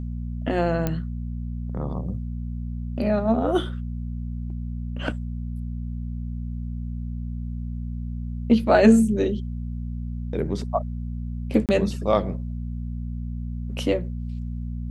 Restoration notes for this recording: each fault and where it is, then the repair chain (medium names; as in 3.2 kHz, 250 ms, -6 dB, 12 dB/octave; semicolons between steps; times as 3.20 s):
hum 60 Hz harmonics 4 -30 dBFS
0.87 s: pop -11 dBFS
11.66–11.69 s: dropout 28 ms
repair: de-click; de-hum 60 Hz, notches 4; interpolate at 11.66 s, 28 ms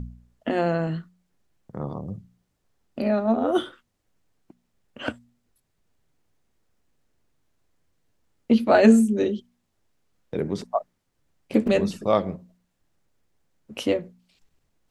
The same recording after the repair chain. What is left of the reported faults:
nothing left